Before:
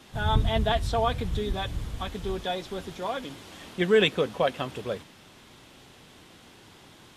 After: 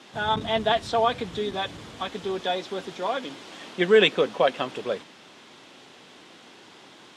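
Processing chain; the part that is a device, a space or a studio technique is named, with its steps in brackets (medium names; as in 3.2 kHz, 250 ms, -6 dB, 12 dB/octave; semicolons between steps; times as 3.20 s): public-address speaker with an overloaded transformer (transformer saturation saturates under 100 Hz; band-pass 240–7000 Hz); trim +4 dB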